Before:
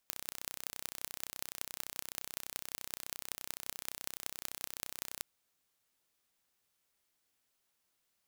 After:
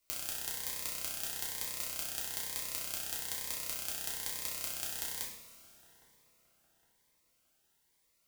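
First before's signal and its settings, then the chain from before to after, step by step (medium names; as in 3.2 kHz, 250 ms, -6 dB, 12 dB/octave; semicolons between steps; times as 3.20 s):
pulse train 31.7 per s, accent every 6, -9 dBFS 5.12 s
feedback echo behind a low-pass 811 ms, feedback 41%, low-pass 1.4 kHz, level -18 dB; two-slope reverb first 0.53 s, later 3.2 s, from -18 dB, DRR -4.5 dB; Shepard-style phaser rising 1.1 Hz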